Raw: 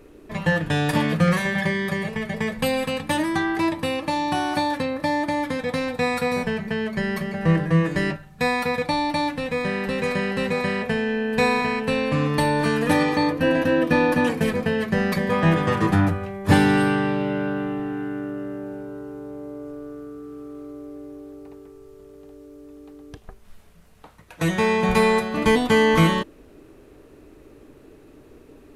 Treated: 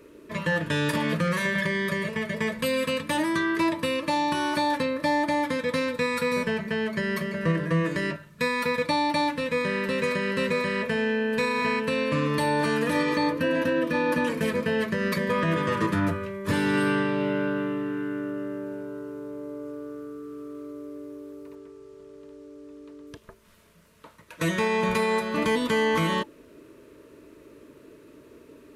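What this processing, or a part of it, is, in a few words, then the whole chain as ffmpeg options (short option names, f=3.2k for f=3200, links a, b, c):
PA system with an anti-feedback notch: -filter_complex "[0:a]asettb=1/sr,asplit=3[a][b][c];[a]atrim=end=21.554[d];[b]atrim=start=21.55:end=23.07,asetpts=PTS-STARTPTS,afade=t=in:d=0.004:c=qsin,afade=t=out:st=1.516:d=0.004:c=qsin,lowpass=7.8k[e];[c]atrim=start=23.066[f];[d][e]acrossfade=d=0.004:c1=hsin:c2=qsin[g];[g][f]acrossfade=d=0.004:c1=qsin:c2=hsin,highpass=f=190:p=1,asuperstop=centerf=770:order=20:qfactor=4.6,alimiter=limit=-15.5dB:level=0:latency=1:release=119"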